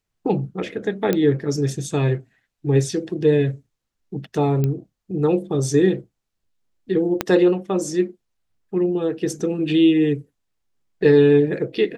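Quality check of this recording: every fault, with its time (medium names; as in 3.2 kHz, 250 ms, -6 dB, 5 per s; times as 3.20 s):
1.13 s: pop -7 dBFS
4.64 s: pop -11 dBFS
7.21 s: pop -5 dBFS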